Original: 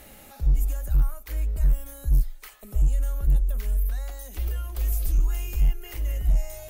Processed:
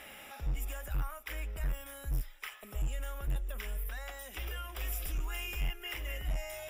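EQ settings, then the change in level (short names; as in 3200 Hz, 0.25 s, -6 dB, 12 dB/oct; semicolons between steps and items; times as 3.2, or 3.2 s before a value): polynomial smoothing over 25 samples; tilt +4.5 dB/oct; low shelf 100 Hz +6.5 dB; +1.0 dB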